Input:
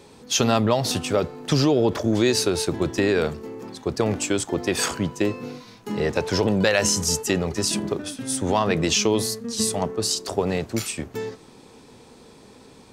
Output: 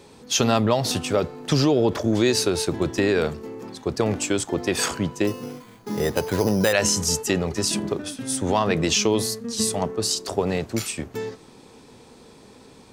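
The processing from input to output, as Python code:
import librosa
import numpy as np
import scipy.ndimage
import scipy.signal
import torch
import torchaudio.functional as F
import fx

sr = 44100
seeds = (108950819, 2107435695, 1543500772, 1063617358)

y = fx.resample_bad(x, sr, factor=8, down='filtered', up='hold', at=(5.27, 6.73))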